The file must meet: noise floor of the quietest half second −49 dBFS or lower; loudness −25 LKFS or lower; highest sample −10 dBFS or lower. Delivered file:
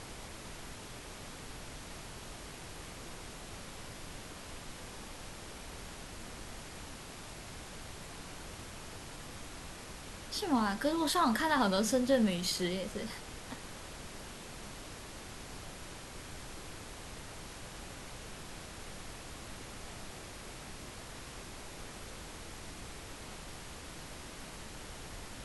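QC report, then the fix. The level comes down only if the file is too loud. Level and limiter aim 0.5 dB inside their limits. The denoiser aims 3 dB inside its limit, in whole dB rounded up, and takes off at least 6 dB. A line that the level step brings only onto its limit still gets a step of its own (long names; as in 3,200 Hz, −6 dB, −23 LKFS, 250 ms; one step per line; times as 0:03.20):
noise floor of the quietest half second −47 dBFS: out of spec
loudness −39.5 LKFS: in spec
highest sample −17.5 dBFS: in spec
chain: broadband denoise 6 dB, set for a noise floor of −47 dBFS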